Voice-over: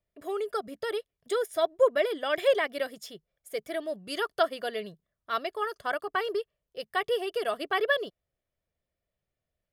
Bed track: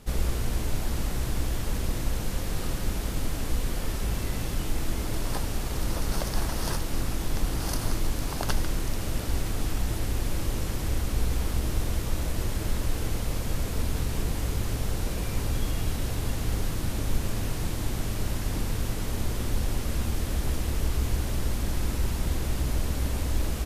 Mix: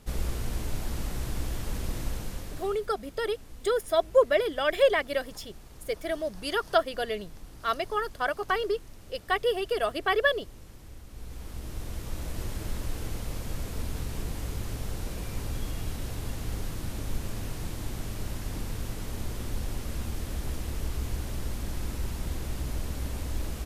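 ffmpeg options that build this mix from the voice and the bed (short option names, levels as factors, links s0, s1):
-filter_complex "[0:a]adelay=2350,volume=1.26[s0];[1:a]volume=2.99,afade=t=out:st=2.05:d=0.82:silence=0.177828,afade=t=in:st=11.09:d=1.32:silence=0.211349[s1];[s0][s1]amix=inputs=2:normalize=0"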